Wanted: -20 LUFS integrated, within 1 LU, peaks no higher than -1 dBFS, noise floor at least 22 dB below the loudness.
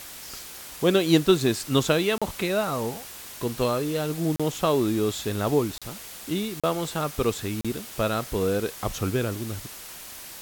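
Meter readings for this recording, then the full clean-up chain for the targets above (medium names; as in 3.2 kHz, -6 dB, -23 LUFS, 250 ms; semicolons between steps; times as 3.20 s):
dropouts 5; longest dropout 36 ms; noise floor -41 dBFS; noise floor target -48 dBFS; loudness -25.5 LUFS; peak level -7.0 dBFS; loudness target -20.0 LUFS
-> interpolate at 2.18/4.36/5.78/6.60/7.61 s, 36 ms; noise print and reduce 7 dB; trim +5.5 dB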